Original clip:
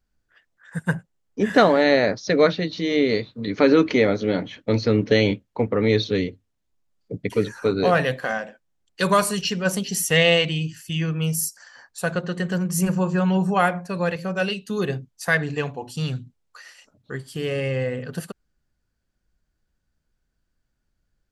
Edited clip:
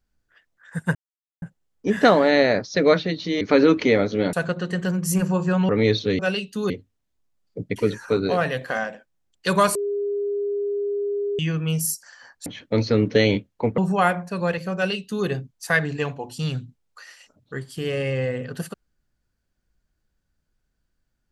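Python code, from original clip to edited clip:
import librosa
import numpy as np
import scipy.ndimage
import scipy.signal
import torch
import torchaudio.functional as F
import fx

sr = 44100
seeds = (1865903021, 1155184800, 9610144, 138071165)

y = fx.edit(x, sr, fx.insert_silence(at_s=0.95, length_s=0.47),
    fx.cut(start_s=2.94, length_s=0.56),
    fx.swap(start_s=4.42, length_s=1.32, other_s=12.0, other_length_s=1.36),
    fx.clip_gain(start_s=7.82, length_s=0.33, db=-3.5),
    fx.bleep(start_s=9.29, length_s=1.64, hz=406.0, db=-22.0),
    fx.duplicate(start_s=14.33, length_s=0.51, to_s=6.24), tone=tone)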